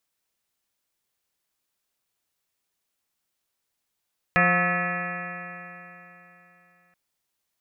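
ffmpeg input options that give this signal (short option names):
-f lavfi -i "aevalsrc='0.0668*pow(10,-3*t/3.37)*sin(2*PI*175.21*t)+0.0158*pow(10,-3*t/3.37)*sin(2*PI*351.68*t)+0.0422*pow(10,-3*t/3.37)*sin(2*PI*530.64*t)+0.0562*pow(10,-3*t/3.37)*sin(2*PI*713.31*t)+0.00944*pow(10,-3*t/3.37)*sin(2*PI*900.87*t)+0.0237*pow(10,-3*t/3.37)*sin(2*PI*1094.42*t)+0.0668*pow(10,-3*t/3.37)*sin(2*PI*1295.03*t)+0.0112*pow(10,-3*t/3.37)*sin(2*PI*1503.68*t)+0.0944*pow(10,-3*t/3.37)*sin(2*PI*1721.3*t)+0.0596*pow(10,-3*t/3.37)*sin(2*PI*1948.72*t)+0.0266*pow(10,-3*t/3.37)*sin(2*PI*2186.72*t)+0.0473*pow(10,-3*t/3.37)*sin(2*PI*2436*t)+0.0168*pow(10,-3*t/3.37)*sin(2*PI*2697.19*t)':d=2.58:s=44100"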